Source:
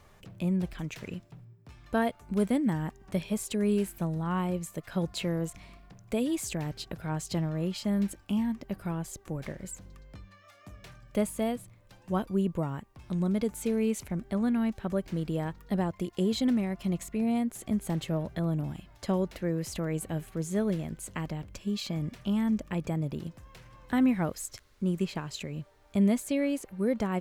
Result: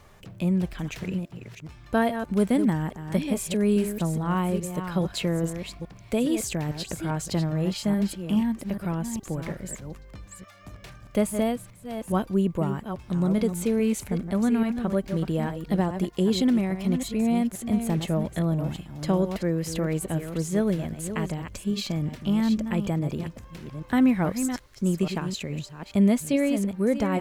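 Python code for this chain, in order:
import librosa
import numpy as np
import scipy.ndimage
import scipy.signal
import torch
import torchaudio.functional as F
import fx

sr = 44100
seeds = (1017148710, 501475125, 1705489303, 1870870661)

y = fx.reverse_delay(x, sr, ms=418, wet_db=-8.5)
y = y * 10.0 ** (4.5 / 20.0)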